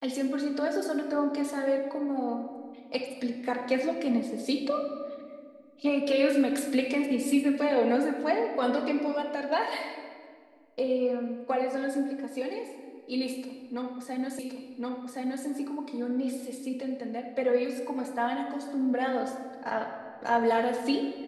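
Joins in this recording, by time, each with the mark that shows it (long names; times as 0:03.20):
0:14.39: the same again, the last 1.07 s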